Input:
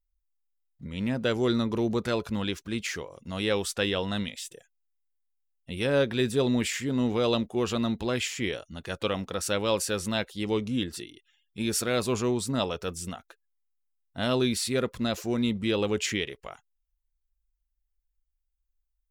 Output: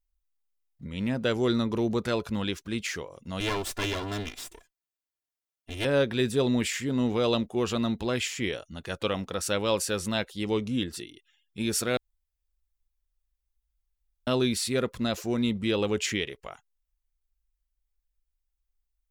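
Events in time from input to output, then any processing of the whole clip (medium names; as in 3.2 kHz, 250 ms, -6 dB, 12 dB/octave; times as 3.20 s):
3.40–5.85 s: comb filter that takes the minimum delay 2.9 ms
11.97–14.27 s: room tone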